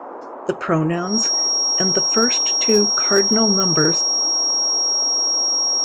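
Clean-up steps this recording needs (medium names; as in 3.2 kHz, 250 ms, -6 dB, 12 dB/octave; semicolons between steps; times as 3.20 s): clip repair -7 dBFS; de-click; band-stop 5.6 kHz, Q 30; noise print and reduce 30 dB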